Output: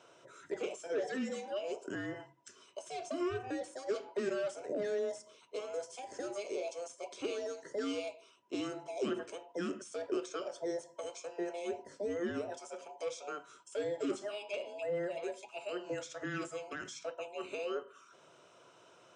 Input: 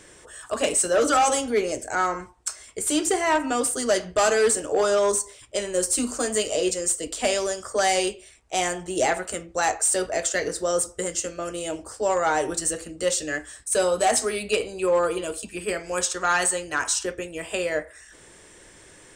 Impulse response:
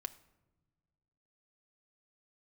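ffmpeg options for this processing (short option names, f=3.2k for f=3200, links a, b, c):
-af "afftfilt=real='real(if(between(b,1,1008),(2*floor((b-1)/48)+1)*48-b,b),0)':imag='imag(if(between(b,1,1008),(2*floor((b-1)/48)+1)*48-b,b),0)*if(between(b,1,1008),-1,1)':win_size=2048:overlap=0.75,alimiter=limit=-21dB:level=0:latency=1:release=162,highpass=f=120:w=0.5412,highpass=f=120:w=1.3066,equalizer=f=350:t=q:w=4:g=8,equalizer=f=800:t=q:w=4:g=-8,equalizer=f=1.9k:t=q:w=4:g=-9,equalizer=f=4.4k:t=q:w=4:g=-10,lowpass=f=5.5k:w=0.5412,lowpass=f=5.5k:w=1.3066,volume=-8dB"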